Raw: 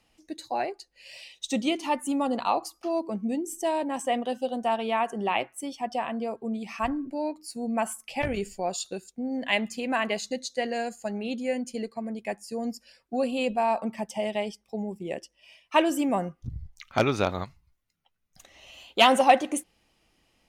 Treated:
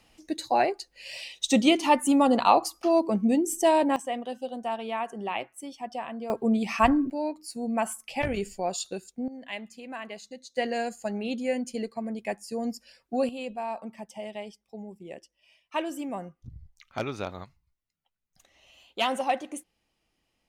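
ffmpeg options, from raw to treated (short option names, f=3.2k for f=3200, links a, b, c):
-af "asetnsamples=n=441:p=0,asendcmd='3.96 volume volume -5dB;6.3 volume volume 7.5dB;7.1 volume volume 0dB;9.28 volume volume -11.5dB;10.56 volume volume 0.5dB;13.29 volume volume -8.5dB',volume=6dB"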